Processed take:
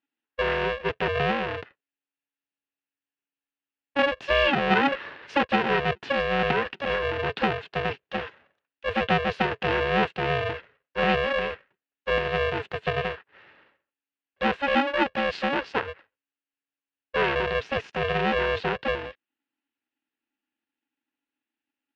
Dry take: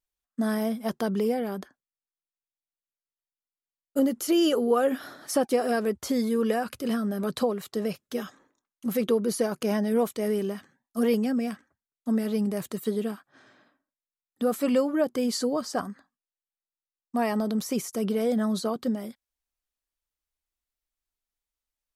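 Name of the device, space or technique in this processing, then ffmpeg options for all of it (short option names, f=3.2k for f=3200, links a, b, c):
ring modulator pedal into a guitar cabinet: -af "aeval=exprs='val(0)*sgn(sin(2*PI*280*n/s))':c=same,highpass=100,equalizer=f=420:t=q:w=4:g=6,equalizer=f=1.7k:t=q:w=4:g=8,equalizer=f=2.7k:t=q:w=4:g=9,lowpass=f=3.6k:w=0.5412,lowpass=f=3.6k:w=1.3066"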